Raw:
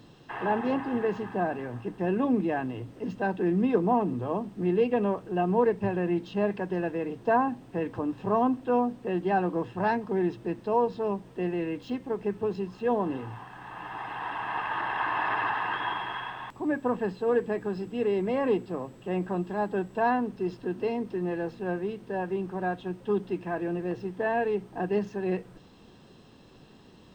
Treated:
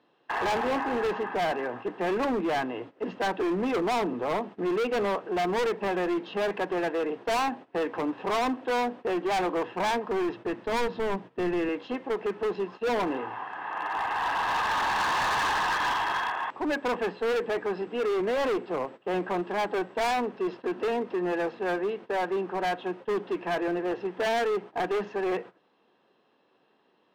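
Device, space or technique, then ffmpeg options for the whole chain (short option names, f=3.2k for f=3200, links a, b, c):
walkie-talkie: -filter_complex "[0:a]highpass=450,lowpass=2.6k,asoftclip=type=hard:threshold=-33.5dB,agate=range=-16dB:threshold=-50dB:ratio=16:detection=peak,asettb=1/sr,asplit=3[a][b][c];[a]atrim=end=9.924[d];[b]atrim=start=9.92:end=11.69,asetpts=PTS-STARTPTS,afade=t=in:d=0.004:c=qsin,afade=t=out:st=1.766:d=0.004:c=qsin,asubboost=boost=7:cutoff=240[e];[c]atrim=start=11.686[f];[d][e]acrossfade=d=0.004:c1=hsin:c2=qsin[g];[g][f]acrossfade=d=0.004:c1=qsin:c2=hsin,volume=9dB"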